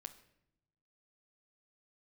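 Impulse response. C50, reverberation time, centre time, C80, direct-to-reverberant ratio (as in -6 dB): 14.0 dB, 0.80 s, 6 ms, 16.5 dB, 7.5 dB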